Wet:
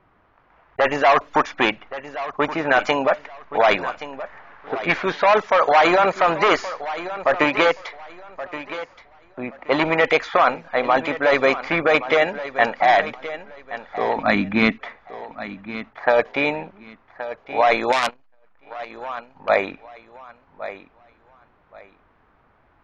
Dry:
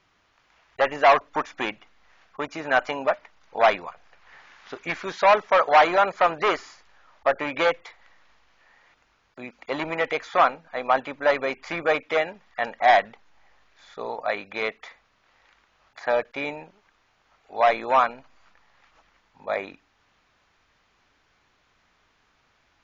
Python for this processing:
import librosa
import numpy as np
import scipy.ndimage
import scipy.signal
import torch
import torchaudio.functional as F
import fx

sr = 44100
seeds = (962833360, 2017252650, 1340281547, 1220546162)

p1 = fx.env_lowpass(x, sr, base_hz=1200.0, full_db=-19.5)
p2 = fx.transient(p1, sr, attack_db=3, sustain_db=-7, at=(7.36, 7.79))
p3 = fx.low_shelf_res(p2, sr, hz=340.0, db=10.5, q=3.0, at=(14.16, 14.78))
p4 = fx.over_compress(p3, sr, threshold_db=-23.0, ratio=-0.5)
p5 = p3 + F.gain(torch.from_numpy(p4), 2.0).numpy()
p6 = fx.wow_flutter(p5, sr, seeds[0], rate_hz=2.1, depth_cents=22.0)
p7 = p6 + fx.echo_feedback(p6, sr, ms=1124, feedback_pct=23, wet_db=-13.5, dry=0)
y = fx.transformer_sat(p7, sr, knee_hz=3800.0, at=(17.92, 19.49))